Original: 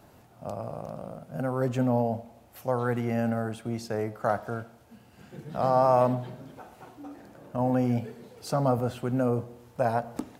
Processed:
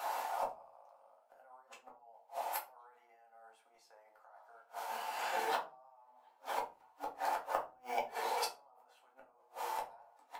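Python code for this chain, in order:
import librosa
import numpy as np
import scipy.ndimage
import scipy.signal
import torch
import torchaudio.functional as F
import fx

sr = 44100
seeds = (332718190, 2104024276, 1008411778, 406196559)

y = fx.block_float(x, sr, bits=7, at=(5.41, 8.13))
y = fx.over_compress(y, sr, threshold_db=-32.0, ratio=-1.0)
y = fx.ladder_highpass(y, sr, hz=730.0, resonance_pct=55)
y = fx.gate_flip(y, sr, shuts_db=-43.0, range_db=-39)
y = fx.room_shoebox(y, sr, seeds[0], volume_m3=120.0, walls='furnished', distance_m=1.9)
y = y * librosa.db_to_amplitude(17.0)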